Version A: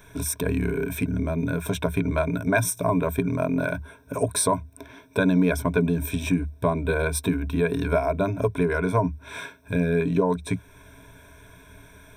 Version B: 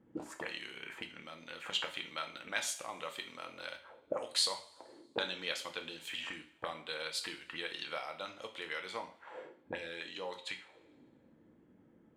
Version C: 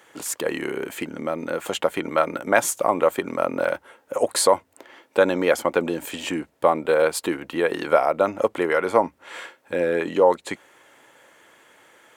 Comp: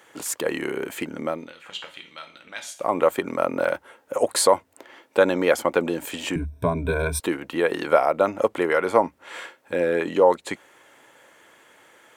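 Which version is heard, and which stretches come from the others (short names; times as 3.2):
C
1.41–2.84 from B, crossfade 0.24 s
6.36–7.2 from A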